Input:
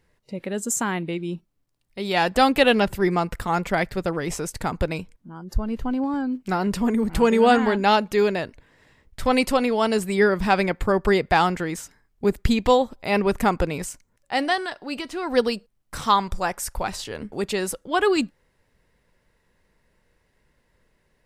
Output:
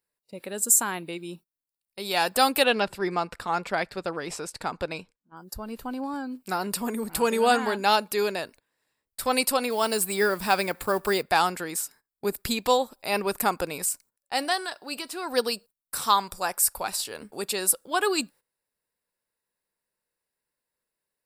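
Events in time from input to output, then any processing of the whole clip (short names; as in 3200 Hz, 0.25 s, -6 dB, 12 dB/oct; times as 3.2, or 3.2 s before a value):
2.64–5.37 LPF 4700 Hz
9.7–11.23 G.711 law mismatch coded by mu
whole clip: RIAA curve recording; gate -44 dBFS, range -16 dB; thirty-one-band EQ 2000 Hz -7 dB, 3150 Hz -6 dB, 6300 Hz -9 dB; gain -2.5 dB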